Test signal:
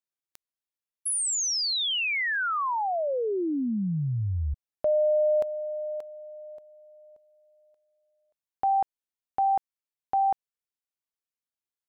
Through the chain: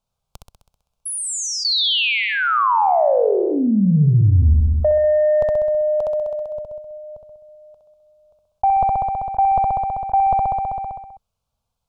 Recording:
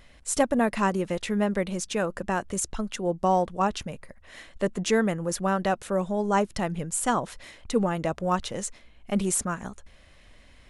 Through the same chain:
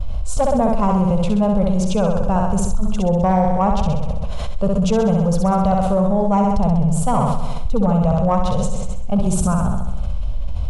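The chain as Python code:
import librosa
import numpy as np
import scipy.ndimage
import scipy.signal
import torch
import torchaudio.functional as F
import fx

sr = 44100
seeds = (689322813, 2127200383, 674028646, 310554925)

y = fx.riaa(x, sr, side='playback')
y = fx.gate_hold(y, sr, open_db=-32.0, close_db=-35.0, hold_ms=212.0, range_db=-20, attack_ms=3.0, release_ms=51.0)
y = fx.dynamic_eq(y, sr, hz=150.0, q=6.6, threshold_db=-40.0, ratio=4.0, max_db=3)
y = np.clip(y, -10.0 ** (-10.0 / 20.0), 10.0 ** (-10.0 / 20.0))
y = fx.fixed_phaser(y, sr, hz=770.0, stages=4)
y = 10.0 ** (-11.0 / 20.0) * np.tanh(y / 10.0 ** (-11.0 / 20.0))
y = fx.room_flutter(y, sr, wall_m=11.1, rt60_s=0.87)
y = fx.env_flatten(y, sr, amount_pct=70)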